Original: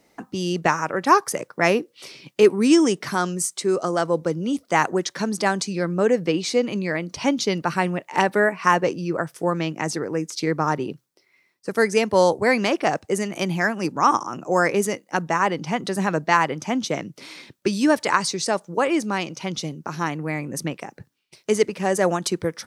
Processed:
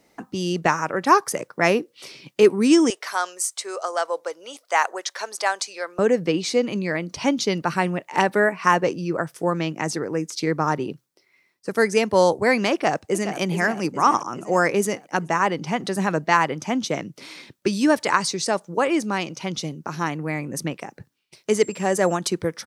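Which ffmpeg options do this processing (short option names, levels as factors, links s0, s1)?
-filter_complex "[0:a]asettb=1/sr,asplit=3[s0][s1][s2];[s0]atrim=end=2.904[s3];[s1]atrim=start=2.9:end=5.99,asetpts=PTS-STARTPTS,afade=t=in:d=0.004:c=qsin,afade=t=out:st=3.086:d=0.004:c=qsin,highpass=f=550:w=0.5412,highpass=f=550:w=1.3066[s4];[s2]atrim=start=5.986[s5];[s3][s4]acrossfade=d=0.004:c1=hsin:c2=qsin[s6];[s6][s5]acrossfade=d=0.004:c1=qsin:c2=hsin,asplit=2[s7][s8];[s8]afade=t=in:st=12.72:d=0.01,afade=t=out:st=13.38:d=0.01,aecho=0:1:420|840|1260|1680|2100|2520|2940:0.316228|0.189737|0.113842|0.0683052|0.0409831|0.0245899|0.0147539[s9];[s7][s9]amix=inputs=2:normalize=0,asettb=1/sr,asplit=3[s10][s11][s12];[s10]atrim=end=21.514[s13];[s11]atrim=start=21.51:end=22.15,asetpts=PTS-STARTPTS,afade=t=in:d=0.004:c=qsin,afade=t=out:st=0.636:d=0.004:c=qsin,aeval=exprs='val(0)+0.00794*sin(2*PI*7500*n/s)':c=same[s14];[s12]atrim=start=22.146[s15];[s13][s14]acrossfade=d=0.004:c1=hsin:c2=qsin[s16];[s16][s15]acrossfade=d=0.004:c1=qsin:c2=hsin"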